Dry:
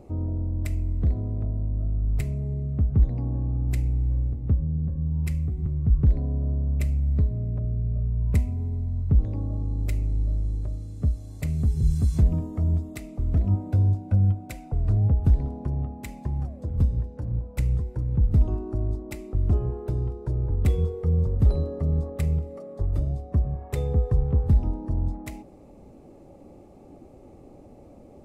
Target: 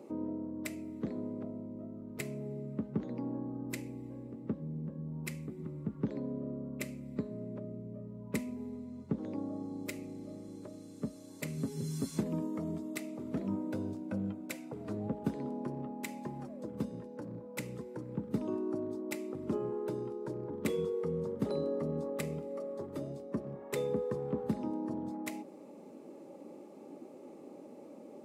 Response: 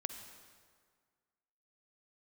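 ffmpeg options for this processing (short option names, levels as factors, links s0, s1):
-filter_complex "[0:a]highpass=f=210:w=0.5412,highpass=f=210:w=1.3066,asettb=1/sr,asplit=3[s0][s1][s2];[s0]atrim=end=11.574[s3];[s1]atrim=start=11.57:end=12.1,asetpts=PTS-STARTPTS,afade=t=in:d=0.004:c=qsin,afade=t=out:st=0.526:d=0.004:c=qsin,aecho=1:1:7.3:0.51,atrim=end_sample=23373[s4];[s2]atrim=start=12.096[s5];[s3][s4]acrossfade=d=0.004:c1=hsin:c2=qsin[s6];[s6][s5]acrossfade=d=0.004:c1=qsin:c2=hsin,asuperstop=centerf=720:order=4:qfactor=7"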